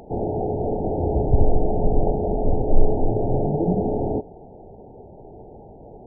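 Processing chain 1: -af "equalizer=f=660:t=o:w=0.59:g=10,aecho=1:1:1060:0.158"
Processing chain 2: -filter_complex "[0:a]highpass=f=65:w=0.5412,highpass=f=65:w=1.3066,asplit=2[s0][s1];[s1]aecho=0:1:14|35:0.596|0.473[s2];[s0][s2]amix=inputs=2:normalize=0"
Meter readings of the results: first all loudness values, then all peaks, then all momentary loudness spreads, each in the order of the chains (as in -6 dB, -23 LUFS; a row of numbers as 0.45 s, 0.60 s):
-20.5 LUFS, -21.0 LUFS; -2.5 dBFS, -6.5 dBFS; 17 LU, 3 LU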